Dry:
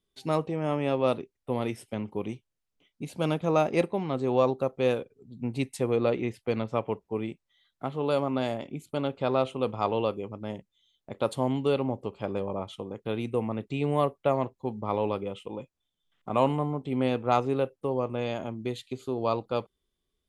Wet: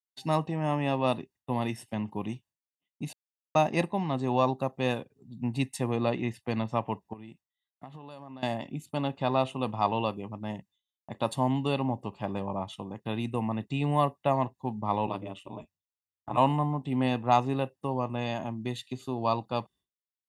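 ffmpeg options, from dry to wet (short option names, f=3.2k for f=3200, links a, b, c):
-filter_complex "[0:a]asettb=1/sr,asplit=3[a][b][c];[a]atrim=end=7.134[d];[b]atrim=start=7.13:end=8.43,asetpts=PTS-STARTPTS,afade=t=in:d=0.004:c=qsin,afade=t=out:st=1.296:d=0.004:c=qsin,acompressor=threshold=-42dB:ratio=5:attack=3.2:release=140:knee=1:detection=peak[e];[c]atrim=start=8.426[f];[d][e]acrossfade=d=0.004:c1=hsin:c2=qsin[g];[g][f]acrossfade=d=0.004:c1=qsin:c2=hsin,asplit=3[h][i][j];[h]afade=t=out:st=15.06:d=0.02[k];[i]aeval=exprs='val(0)*sin(2*PI*92*n/s)':c=same,afade=t=in:st=15.06:d=0.02,afade=t=out:st=16.36:d=0.02[l];[j]afade=t=in:st=16.36:d=0.02[m];[k][l][m]amix=inputs=3:normalize=0,asplit=3[n][o][p];[n]atrim=end=3.13,asetpts=PTS-STARTPTS,afade=t=out:st=3.126:d=0.004:c=hsin[q];[o]atrim=start=3.13:end=3.55,asetpts=PTS-STARTPTS,volume=0[r];[p]atrim=start=3.55,asetpts=PTS-STARTPTS,afade=t=in:d=0.004:c=hsin[s];[q][r][s]concat=n=3:v=0:a=1,agate=range=-33dB:threshold=-52dB:ratio=3:detection=peak,highpass=99,aecho=1:1:1.1:0.61"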